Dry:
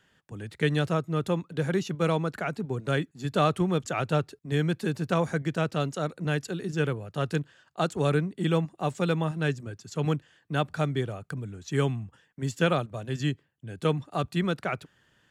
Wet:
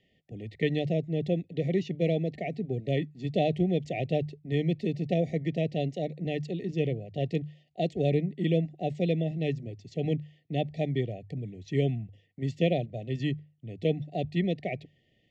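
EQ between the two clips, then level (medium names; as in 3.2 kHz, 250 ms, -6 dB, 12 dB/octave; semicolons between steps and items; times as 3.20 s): brick-wall FIR band-stop 770–1800 Hz; distance through air 200 m; hum notches 50/100/150 Hz; 0.0 dB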